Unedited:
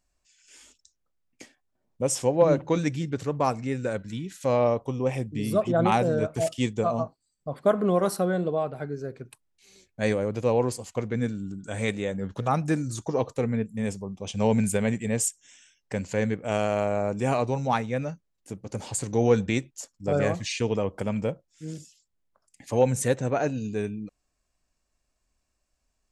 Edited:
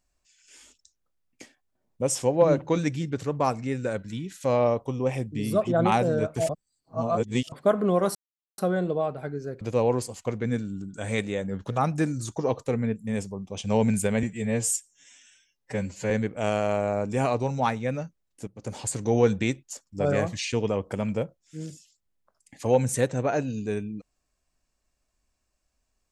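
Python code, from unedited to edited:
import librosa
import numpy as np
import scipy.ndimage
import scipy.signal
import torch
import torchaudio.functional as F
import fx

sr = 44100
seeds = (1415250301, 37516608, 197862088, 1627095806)

y = fx.edit(x, sr, fx.reverse_span(start_s=6.49, length_s=1.03),
    fx.insert_silence(at_s=8.15, length_s=0.43),
    fx.cut(start_s=9.18, length_s=1.13),
    fx.stretch_span(start_s=14.93, length_s=1.25, factor=1.5),
    fx.fade_in_from(start_s=18.55, length_s=0.36, curve='qsin', floor_db=-13.0), tone=tone)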